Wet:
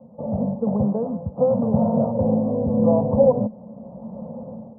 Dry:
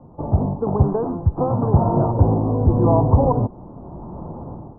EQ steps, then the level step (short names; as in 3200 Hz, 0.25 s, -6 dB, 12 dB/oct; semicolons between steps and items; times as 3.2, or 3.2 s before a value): double band-pass 340 Hz, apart 1.3 oct; +7.5 dB